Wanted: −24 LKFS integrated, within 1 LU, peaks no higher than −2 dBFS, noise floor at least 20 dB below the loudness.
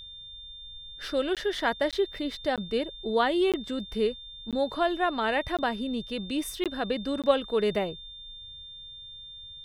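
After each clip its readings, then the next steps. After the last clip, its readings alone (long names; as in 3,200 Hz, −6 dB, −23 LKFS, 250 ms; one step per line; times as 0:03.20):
number of dropouts 8; longest dropout 17 ms; interfering tone 3,600 Hz; level of the tone −42 dBFS; integrated loudness −28.5 LKFS; sample peak −9.0 dBFS; target loudness −24.0 LKFS
→ repair the gap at 0:01.35/0:01.91/0:02.56/0:03.52/0:04.51/0:05.57/0:06.64/0:07.22, 17 ms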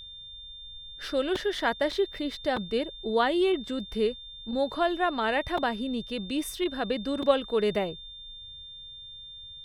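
number of dropouts 0; interfering tone 3,600 Hz; level of the tone −42 dBFS
→ notch filter 3,600 Hz, Q 30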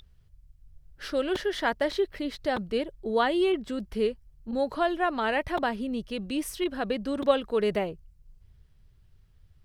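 interfering tone none found; integrated loudness −28.5 LKFS; sample peak −9.5 dBFS; target loudness −24.0 LKFS
→ level +4.5 dB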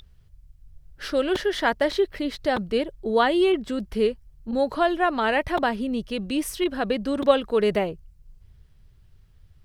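integrated loudness −24.0 LKFS; sample peak −5.0 dBFS; background noise floor −55 dBFS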